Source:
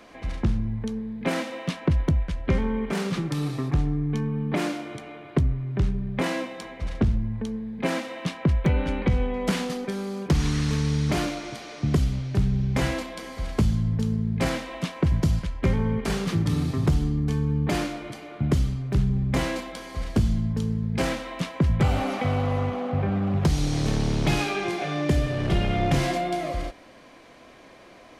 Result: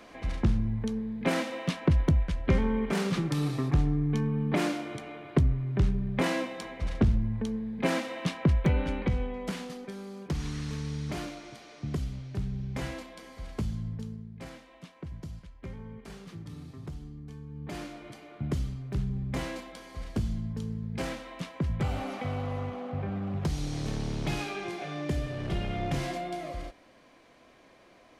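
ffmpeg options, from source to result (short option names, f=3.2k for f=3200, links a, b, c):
-af "volume=9dB,afade=t=out:st=8.38:d=1.17:silence=0.354813,afade=t=out:st=13.87:d=0.43:silence=0.375837,afade=t=in:st=17.5:d=0.62:silence=0.298538"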